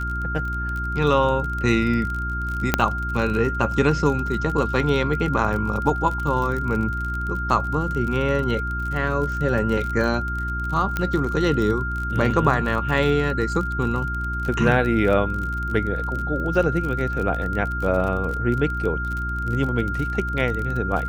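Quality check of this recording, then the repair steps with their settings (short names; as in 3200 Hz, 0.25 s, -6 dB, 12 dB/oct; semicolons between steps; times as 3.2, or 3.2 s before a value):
crackle 38/s -27 dBFS
hum 60 Hz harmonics 6 -28 dBFS
tone 1400 Hz -27 dBFS
2.74 pop -2 dBFS
10.97 pop -10 dBFS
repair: de-click; de-hum 60 Hz, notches 6; notch 1400 Hz, Q 30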